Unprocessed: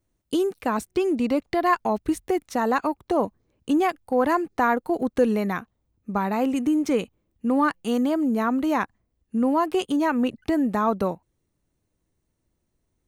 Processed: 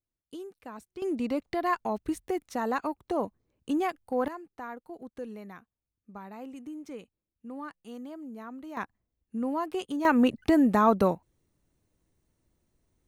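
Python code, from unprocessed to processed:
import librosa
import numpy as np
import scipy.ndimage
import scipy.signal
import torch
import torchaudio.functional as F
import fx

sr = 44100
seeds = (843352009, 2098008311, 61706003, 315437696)

y = fx.gain(x, sr, db=fx.steps((0.0, -18.5), (1.02, -7.0), (4.28, -19.0), (8.77, -9.0), (10.05, 1.0)))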